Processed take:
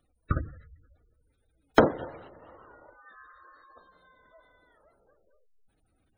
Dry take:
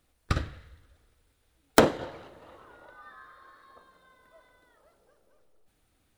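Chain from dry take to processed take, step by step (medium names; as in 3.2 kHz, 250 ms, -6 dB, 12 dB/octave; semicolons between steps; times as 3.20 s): spectral gate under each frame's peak -20 dB strong; 2.79–3.42 s: peaking EQ 1.9 kHz -> 460 Hz -7 dB 0.83 oct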